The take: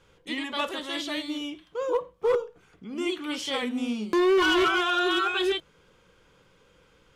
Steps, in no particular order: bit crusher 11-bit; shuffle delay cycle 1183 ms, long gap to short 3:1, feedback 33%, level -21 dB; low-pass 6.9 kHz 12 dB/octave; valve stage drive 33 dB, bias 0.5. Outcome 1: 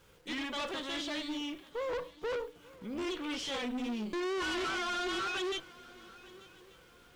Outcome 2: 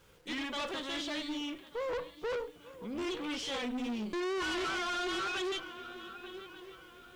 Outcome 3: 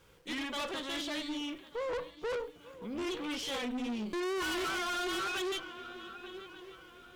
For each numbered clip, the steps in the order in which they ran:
valve stage > low-pass > bit crusher > shuffle delay; shuffle delay > valve stage > low-pass > bit crusher; low-pass > bit crusher > shuffle delay > valve stage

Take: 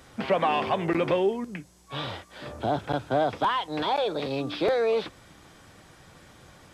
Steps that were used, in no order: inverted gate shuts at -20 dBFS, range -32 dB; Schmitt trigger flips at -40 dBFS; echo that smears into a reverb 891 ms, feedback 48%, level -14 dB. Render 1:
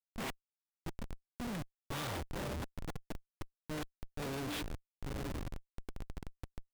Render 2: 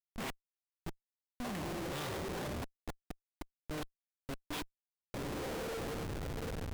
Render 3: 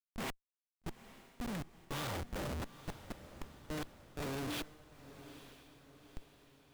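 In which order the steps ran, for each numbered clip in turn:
inverted gate > echo that smears into a reverb > Schmitt trigger; echo that smears into a reverb > inverted gate > Schmitt trigger; inverted gate > Schmitt trigger > echo that smears into a reverb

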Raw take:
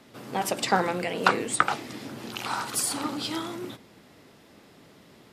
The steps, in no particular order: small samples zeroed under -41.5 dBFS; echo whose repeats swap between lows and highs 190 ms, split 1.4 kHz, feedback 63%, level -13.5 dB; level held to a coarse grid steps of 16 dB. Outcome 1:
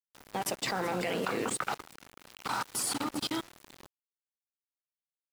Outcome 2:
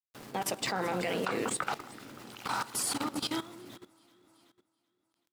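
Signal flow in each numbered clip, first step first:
echo whose repeats swap between lows and highs > level held to a coarse grid > small samples zeroed; small samples zeroed > echo whose repeats swap between lows and highs > level held to a coarse grid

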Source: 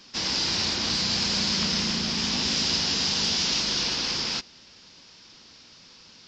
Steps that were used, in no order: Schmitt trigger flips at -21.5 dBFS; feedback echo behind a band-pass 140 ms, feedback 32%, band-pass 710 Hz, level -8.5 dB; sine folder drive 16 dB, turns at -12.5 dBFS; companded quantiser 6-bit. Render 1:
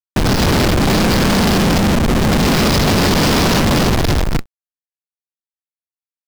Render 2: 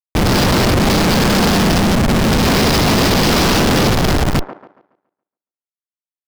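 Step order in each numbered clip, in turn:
feedback echo behind a band-pass > Schmitt trigger > companded quantiser > sine folder; companded quantiser > Schmitt trigger > sine folder > feedback echo behind a band-pass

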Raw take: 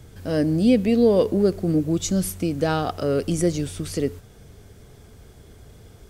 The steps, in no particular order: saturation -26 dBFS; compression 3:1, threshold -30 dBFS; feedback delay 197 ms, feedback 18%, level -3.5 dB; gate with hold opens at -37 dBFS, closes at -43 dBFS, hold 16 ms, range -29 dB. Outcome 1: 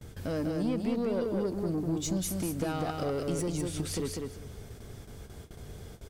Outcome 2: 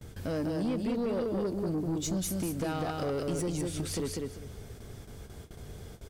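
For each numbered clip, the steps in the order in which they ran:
compression > saturation > feedback delay > gate with hold; compression > feedback delay > gate with hold > saturation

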